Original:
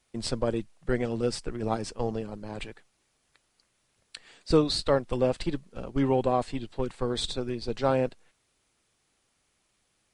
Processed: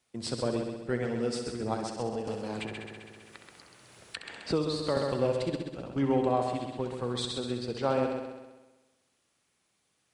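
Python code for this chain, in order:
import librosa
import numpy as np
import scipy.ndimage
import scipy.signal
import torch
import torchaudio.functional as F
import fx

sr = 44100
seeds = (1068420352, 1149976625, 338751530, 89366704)

y = scipy.signal.sosfilt(scipy.signal.butter(2, 87.0, 'highpass', fs=sr, output='sos'), x)
y = fx.echo_heads(y, sr, ms=65, heads='first and second', feedback_pct=55, wet_db=-8.5)
y = fx.band_squash(y, sr, depth_pct=70, at=(2.27, 4.97))
y = F.gain(torch.from_numpy(y), -3.5).numpy()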